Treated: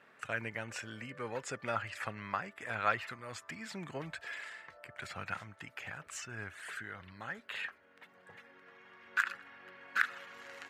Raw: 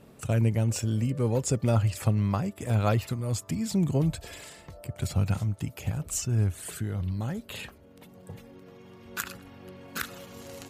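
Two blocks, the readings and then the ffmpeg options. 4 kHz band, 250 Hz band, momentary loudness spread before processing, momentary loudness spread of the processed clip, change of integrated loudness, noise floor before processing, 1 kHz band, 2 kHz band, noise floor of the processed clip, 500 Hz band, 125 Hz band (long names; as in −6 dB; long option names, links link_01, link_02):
−6.5 dB, −19.0 dB, 18 LU, 21 LU, −11.0 dB, −53 dBFS, −1.0 dB, +5.5 dB, −64 dBFS, −11.0 dB, −24.5 dB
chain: -af "bandpass=frequency=1700:width_type=q:width=2.9:csg=0,volume=8dB"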